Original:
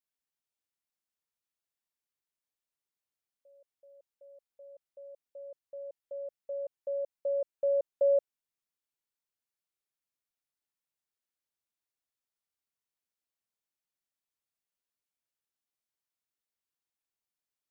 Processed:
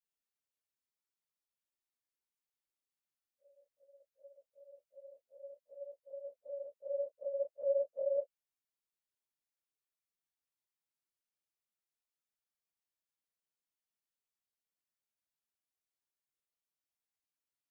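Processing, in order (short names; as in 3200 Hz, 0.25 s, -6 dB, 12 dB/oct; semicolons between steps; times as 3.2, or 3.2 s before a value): phase scrambler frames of 0.1 s; gain -5 dB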